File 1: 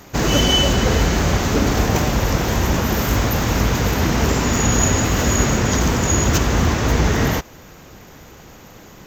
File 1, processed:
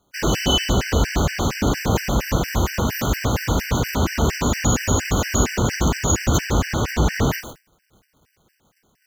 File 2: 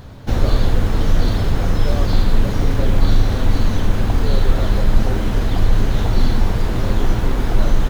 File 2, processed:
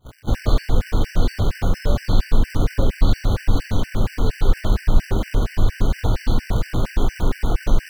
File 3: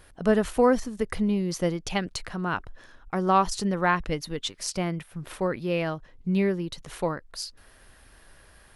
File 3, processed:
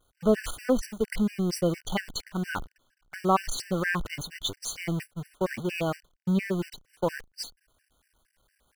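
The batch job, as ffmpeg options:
ffmpeg -i in.wav -af "aeval=exprs='val(0)+0.5*0.0376*sgn(val(0))':channel_layout=same,agate=range=-32dB:threshold=-29dB:ratio=16:detection=peak,afftfilt=real='re*gt(sin(2*PI*4.3*pts/sr)*(1-2*mod(floor(b*sr/1024/1500),2)),0)':imag='im*gt(sin(2*PI*4.3*pts/sr)*(1-2*mod(floor(b*sr/1024/1500),2)),0)':win_size=1024:overlap=0.75,volume=-1dB" out.wav

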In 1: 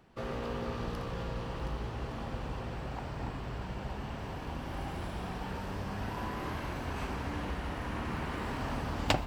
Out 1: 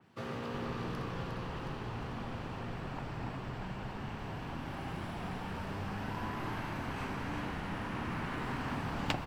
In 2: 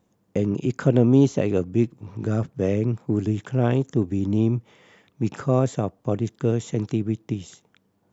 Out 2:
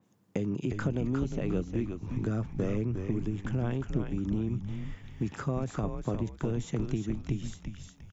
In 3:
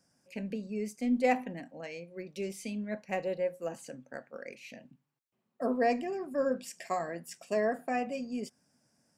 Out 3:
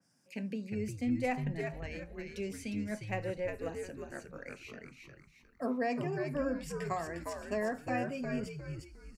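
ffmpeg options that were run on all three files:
ffmpeg -i in.wav -filter_complex "[0:a]highpass=frequency=93:width=0.5412,highpass=frequency=93:width=1.3066,equalizer=frequency=560:width=1.2:gain=-5,acompressor=threshold=-28dB:ratio=6,asplit=5[link_01][link_02][link_03][link_04][link_05];[link_02]adelay=356,afreqshift=-98,volume=-5dB[link_06];[link_03]adelay=712,afreqshift=-196,volume=-14.6dB[link_07];[link_04]adelay=1068,afreqshift=-294,volume=-24.3dB[link_08];[link_05]adelay=1424,afreqshift=-392,volume=-33.9dB[link_09];[link_01][link_06][link_07][link_08][link_09]amix=inputs=5:normalize=0,adynamicequalizer=threshold=0.00126:dfrequency=3400:dqfactor=0.7:tfrequency=3400:tqfactor=0.7:attack=5:release=100:ratio=0.375:range=2.5:mode=cutabove:tftype=highshelf" out.wav

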